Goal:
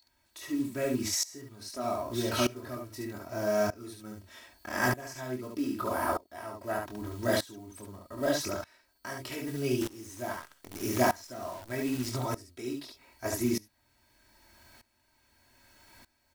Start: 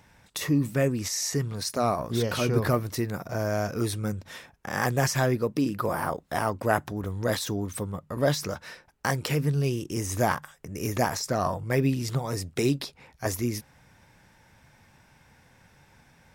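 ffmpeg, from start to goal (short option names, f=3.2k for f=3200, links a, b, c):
-filter_complex "[0:a]aeval=exprs='val(0)+0.0126*sin(2*PI*4400*n/s)':c=same,acompressor=mode=upward:threshold=-38dB:ratio=2.5,acrusher=bits=5:mode=log:mix=0:aa=0.000001,equalizer=f=90:t=o:w=1.7:g=-3.5,aecho=1:1:24|71:0.562|0.631,adynamicequalizer=threshold=0.02:dfrequency=150:dqfactor=0.97:tfrequency=150:tqfactor=0.97:attack=5:release=100:ratio=0.375:range=1.5:mode=boostabove:tftype=bell,aecho=1:1:3.1:0.95,asettb=1/sr,asplit=3[a][b][c];[a]atrim=end=9.814[d];[b]atrim=start=9.81:end=12.1,asetpts=PTS-STARTPTS,afade=t=in:d=0.004:c=qsin,afade=t=out:st=2.286:d=0.004:c=qsin,acrusher=bits=6:dc=4:mix=0:aa=0.000001[e];[c]atrim=start=12.096[f];[d][e]acrossfade=d=0.004:c1=hsin:c2=qsin[g];[g][f]acrossfade=d=0.004:c1=qsin:c2=hsin,aeval=exprs='val(0)*pow(10,-20*if(lt(mod(-0.81*n/s,1),2*abs(-0.81)/1000),1-mod(-0.81*n/s,1)/(2*abs(-0.81)/1000),(mod(-0.81*n/s,1)-2*abs(-0.81)/1000)/(1-2*abs(-0.81)/1000))/20)':c=same,volume=-3.5dB"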